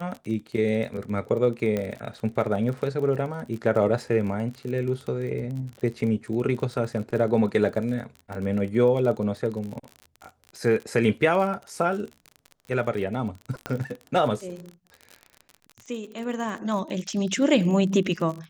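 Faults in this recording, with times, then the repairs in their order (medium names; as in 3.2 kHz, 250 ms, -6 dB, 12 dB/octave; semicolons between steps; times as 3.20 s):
crackle 38 per s -32 dBFS
1.77 s: pop -15 dBFS
13.66 s: pop -14 dBFS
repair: de-click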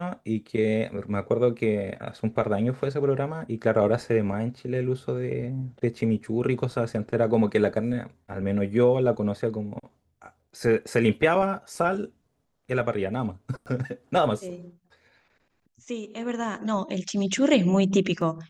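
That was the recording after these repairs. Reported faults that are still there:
13.66 s: pop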